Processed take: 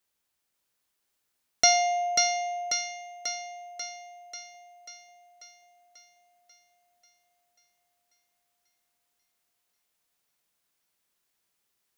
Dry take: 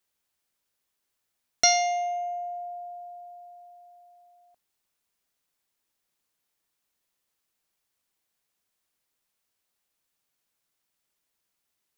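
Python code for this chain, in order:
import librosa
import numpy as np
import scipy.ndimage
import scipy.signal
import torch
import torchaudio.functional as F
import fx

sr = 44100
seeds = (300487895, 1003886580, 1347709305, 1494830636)

y = fx.echo_thinned(x, sr, ms=540, feedback_pct=60, hz=160.0, wet_db=-3.5)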